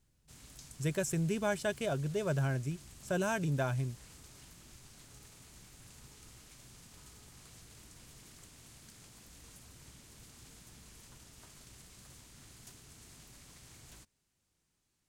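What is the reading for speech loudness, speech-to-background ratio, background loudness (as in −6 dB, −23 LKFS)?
−34.5 LKFS, 20.0 dB, −54.5 LKFS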